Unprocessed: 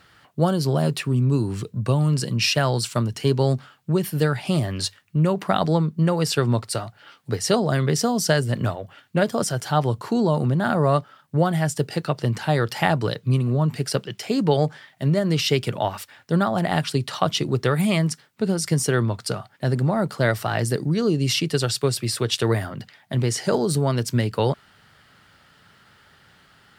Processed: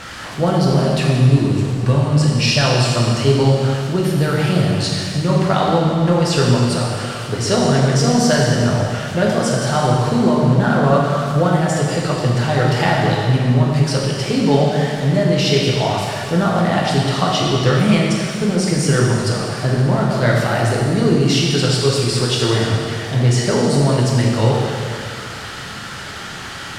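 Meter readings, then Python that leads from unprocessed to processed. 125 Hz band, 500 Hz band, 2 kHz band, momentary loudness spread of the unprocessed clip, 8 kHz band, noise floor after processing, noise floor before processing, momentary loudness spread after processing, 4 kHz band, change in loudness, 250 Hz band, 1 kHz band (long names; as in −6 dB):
+7.0 dB, +6.0 dB, +7.0 dB, 7 LU, +4.5 dB, −30 dBFS, −56 dBFS, 6 LU, +7.0 dB, +6.5 dB, +6.5 dB, +6.5 dB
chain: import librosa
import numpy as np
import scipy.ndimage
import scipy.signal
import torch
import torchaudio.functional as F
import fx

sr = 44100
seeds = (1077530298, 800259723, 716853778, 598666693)

y = x + 0.5 * 10.0 ** (-29.5 / 20.0) * np.sign(x)
y = scipy.signal.sosfilt(scipy.signal.butter(2, 7600.0, 'lowpass', fs=sr, output='sos'), y)
y = fx.rev_plate(y, sr, seeds[0], rt60_s=2.3, hf_ratio=1.0, predelay_ms=0, drr_db=-3.5)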